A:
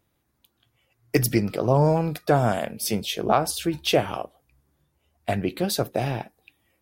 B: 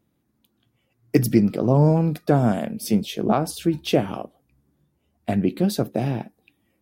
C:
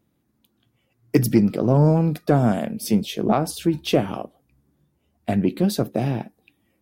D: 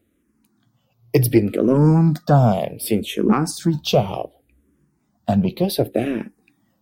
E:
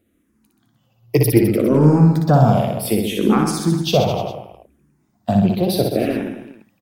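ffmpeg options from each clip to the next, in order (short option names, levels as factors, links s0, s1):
-af "equalizer=f=220:t=o:w=1.7:g=13,volume=0.596"
-af "aeval=exprs='0.668*(cos(1*acos(clip(val(0)/0.668,-1,1)))-cos(1*PI/2))+0.0188*(cos(5*acos(clip(val(0)/0.668,-1,1)))-cos(5*PI/2))':c=same"
-filter_complex "[0:a]asplit=2[s0][s1];[s1]afreqshift=-0.67[s2];[s0][s2]amix=inputs=2:normalize=1,volume=2"
-af "aecho=1:1:60|129|208.4|299.6|404.5:0.631|0.398|0.251|0.158|0.1"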